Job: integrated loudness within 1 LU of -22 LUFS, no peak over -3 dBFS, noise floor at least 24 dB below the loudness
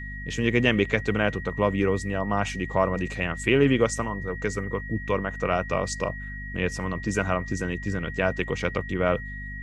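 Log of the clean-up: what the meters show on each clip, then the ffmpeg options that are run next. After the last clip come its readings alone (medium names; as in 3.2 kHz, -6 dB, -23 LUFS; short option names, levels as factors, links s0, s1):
hum 50 Hz; highest harmonic 250 Hz; hum level -35 dBFS; steady tone 1.9 kHz; tone level -37 dBFS; loudness -26.0 LUFS; peak level -5.5 dBFS; loudness target -22.0 LUFS
-> -af "bandreject=f=50:t=h:w=4,bandreject=f=100:t=h:w=4,bandreject=f=150:t=h:w=4,bandreject=f=200:t=h:w=4,bandreject=f=250:t=h:w=4"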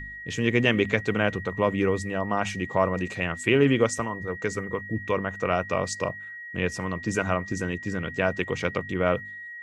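hum not found; steady tone 1.9 kHz; tone level -37 dBFS
-> -af "bandreject=f=1900:w=30"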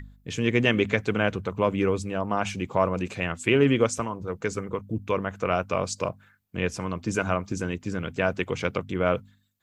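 steady tone not found; loudness -26.5 LUFS; peak level -6.0 dBFS; loudness target -22.0 LUFS
-> -af "volume=1.68,alimiter=limit=0.708:level=0:latency=1"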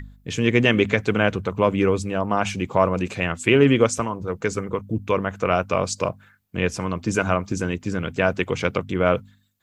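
loudness -22.5 LUFS; peak level -3.0 dBFS; noise floor -57 dBFS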